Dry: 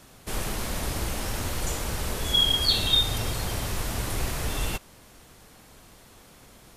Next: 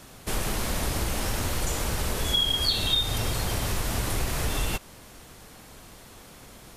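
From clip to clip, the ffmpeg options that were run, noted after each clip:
-af "acompressor=threshold=-28dB:ratio=2.5,volume=4dB"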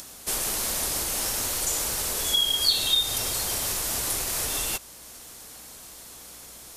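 -af "aeval=exprs='val(0)+0.00355*(sin(2*PI*60*n/s)+sin(2*PI*2*60*n/s)/2+sin(2*PI*3*60*n/s)/3+sin(2*PI*4*60*n/s)/4+sin(2*PI*5*60*n/s)/5)':c=same,acompressor=mode=upward:threshold=-40dB:ratio=2.5,bass=f=250:g=-10,treble=f=4k:g=11,volume=-2.5dB"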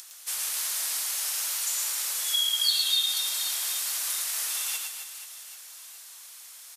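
-filter_complex "[0:a]highpass=1.4k,asplit=2[a][b];[b]aecho=0:1:110|264|479.6|781.4|1204:0.631|0.398|0.251|0.158|0.1[c];[a][c]amix=inputs=2:normalize=0,volume=-3.5dB"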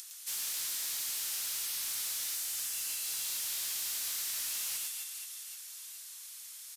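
-af "tiltshelf=f=1.3k:g=-7,afftfilt=real='re*lt(hypot(re,im),0.1)':imag='im*lt(hypot(re,im),0.1)':win_size=1024:overlap=0.75,asoftclip=type=tanh:threshold=-23dB,volume=-7.5dB"

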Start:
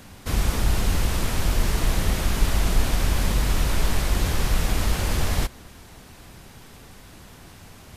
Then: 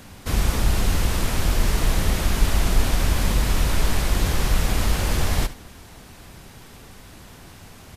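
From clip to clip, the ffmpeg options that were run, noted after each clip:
-af "aecho=1:1:71:0.178,volume=1.5dB"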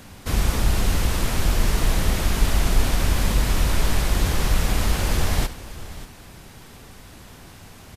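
-af "aecho=1:1:589:0.158"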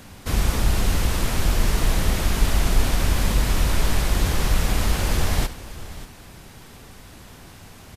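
-af anull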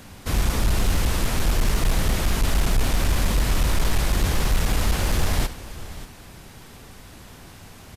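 -af "asoftclip=type=hard:threshold=-14dB"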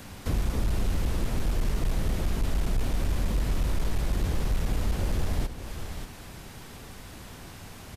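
-filter_complex "[0:a]acrossover=split=640|4100[a][b][c];[a]acompressor=threshold=-23dB:ratio=4[d];[b]acompressor=threshold=-45dB:ratio=4[e];[c]acompressor=threshold=-49dB:ratio=4[f];[d][e][f]amix=inputs=3:normalize=0"

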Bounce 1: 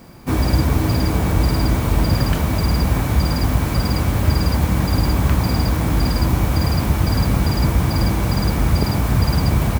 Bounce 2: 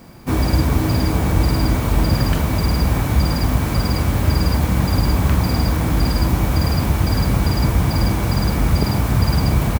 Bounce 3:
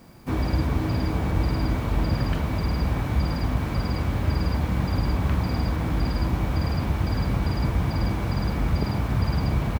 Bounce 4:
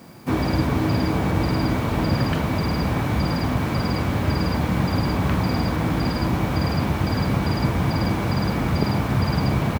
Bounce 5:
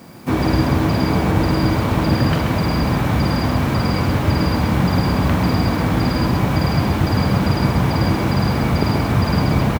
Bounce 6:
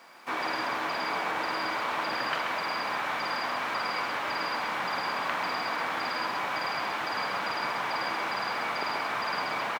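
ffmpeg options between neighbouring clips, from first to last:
-filter_complex "[0:a]asplit=2[a][b];[b]adelay=44,volume=-12.5dB[c];[a][c]amix=inputs=2:normalize=0"
-filter_complex "[0:a]acrossover=split=4700[a][b];[b]acompressor=threshold=-44dB:ratio=4:attack=1:release=60[c];[a][c]amix=inputs=2:normalize=0,volume=-7dB"
-af "highpass=110,volume=6dB"
-af "aecho=1:1:132:0.531,volume=3.5dB"
-af "highpass=1.1k,aemphasis=mode=reproduction:type=75kf"

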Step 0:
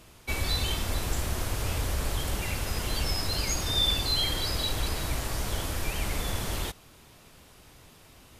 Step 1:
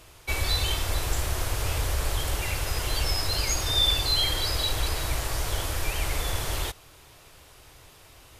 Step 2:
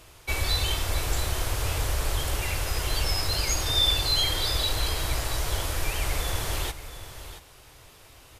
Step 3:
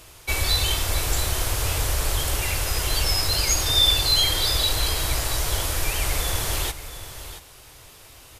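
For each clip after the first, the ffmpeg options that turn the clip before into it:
-af "equalizer=f=210:w=2.1:g=-14,volume=3dB"
-af "aecho=1:1:678:0.237"
-af "highshelf=f=4.3k:g=5.5,volume=2.5dB"

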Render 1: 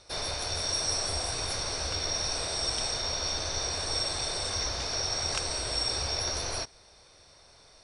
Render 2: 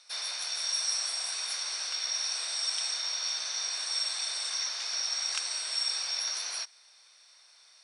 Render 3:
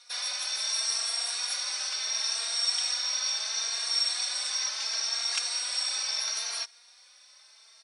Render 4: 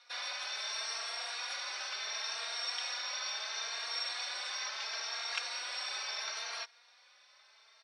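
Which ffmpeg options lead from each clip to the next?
-af "highpass=1.5k"
-filter_complex "[0:a]asplit=2[a][b];[b]adelay=3.7,afreqshift=0.73[c];[a][c]amix=inputs=2:normalize=1,volume=5.5dB"
-af "highpass=300,lowpass=3k"

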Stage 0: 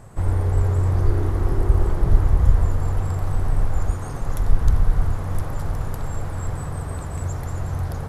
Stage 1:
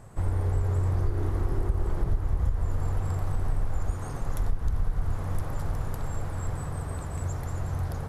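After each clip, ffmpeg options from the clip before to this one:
-af "acompressor=threshold=-16dB:ratio=6,volume=-4.5dB"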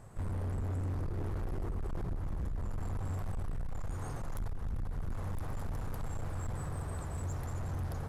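-af "asoftclip=type=hard:threshold=-28dB,volume=-4.5dB"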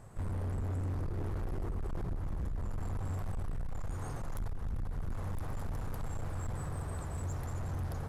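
-af anull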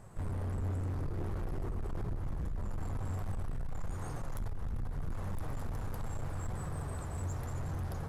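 -af "flanger=delay=4.9:depth=5.4:regen=77:speed=0.76:shape=triangular,volume=4.5dB"

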